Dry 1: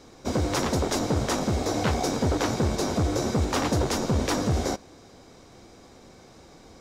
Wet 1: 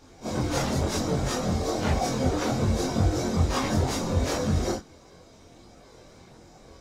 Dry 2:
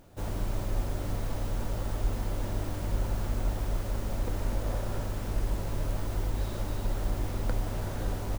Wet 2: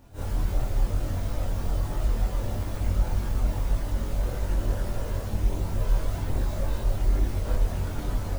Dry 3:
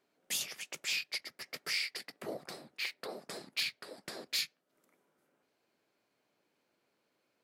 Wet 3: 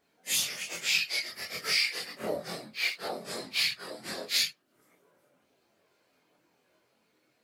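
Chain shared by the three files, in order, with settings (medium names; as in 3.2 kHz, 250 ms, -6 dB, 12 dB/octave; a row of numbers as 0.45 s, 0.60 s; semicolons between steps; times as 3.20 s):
phase randomisation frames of 100 ms; chorus voices 4, 0.61 Hz, delay 23 ms, depth 1 ms; peak normalisation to -12 dBFS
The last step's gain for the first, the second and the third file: +1.5 dB, +4.5 dB, +10.5 dB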